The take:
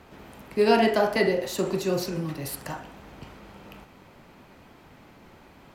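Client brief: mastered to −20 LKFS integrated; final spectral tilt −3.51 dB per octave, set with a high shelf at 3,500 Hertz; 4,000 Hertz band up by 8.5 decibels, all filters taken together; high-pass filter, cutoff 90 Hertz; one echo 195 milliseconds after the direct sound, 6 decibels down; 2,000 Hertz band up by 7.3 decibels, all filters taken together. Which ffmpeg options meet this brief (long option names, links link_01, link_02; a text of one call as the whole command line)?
ffmpeg -i in.wav -af "highpass=90,equalizer=frequency=2000:width_type=o:gain=6,highshelf=frequency=3500:gain=3.5,equalizer=frequency=4000:width_type=o:gain=6.5,aecho=1:1:195:0.501,volume=2dB" out.wav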